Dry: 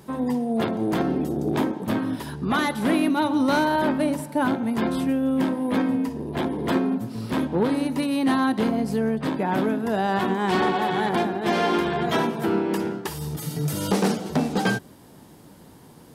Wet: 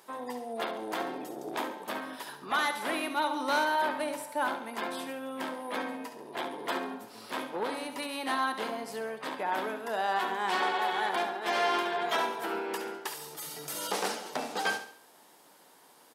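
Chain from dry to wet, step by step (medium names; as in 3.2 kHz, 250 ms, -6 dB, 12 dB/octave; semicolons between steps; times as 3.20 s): high-pass 650 Hz 12 dB/octave; feedback delay 69 ms, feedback 42%, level -10 dB; trim -3.5 dB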